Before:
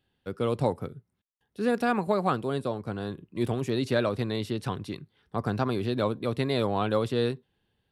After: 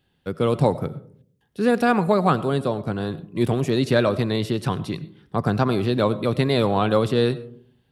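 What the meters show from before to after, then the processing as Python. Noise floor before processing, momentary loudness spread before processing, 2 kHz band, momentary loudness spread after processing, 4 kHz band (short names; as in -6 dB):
-78 dBFS, 10 LU, +6.5 dB, 10 LU, +6.5 dB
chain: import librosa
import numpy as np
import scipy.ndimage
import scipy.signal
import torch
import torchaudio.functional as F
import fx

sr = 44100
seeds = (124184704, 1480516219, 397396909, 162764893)

y = fx.peak_eq(x, sr, hz=160.0, db=7.0, octaves=0.28)
y = fx.rev_freeverb(y, sr, rt60_s=0.56, hf_ratio=0.3, predelay_ms=55, drr_db=16.5)
y = y * 10.0 ** (6.5 / 20.0)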